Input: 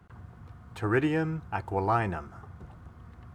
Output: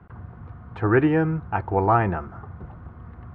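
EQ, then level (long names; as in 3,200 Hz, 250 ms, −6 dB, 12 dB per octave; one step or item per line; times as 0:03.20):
low-pass filter 1,800 Hz 12 dB per octave
+7.5 dB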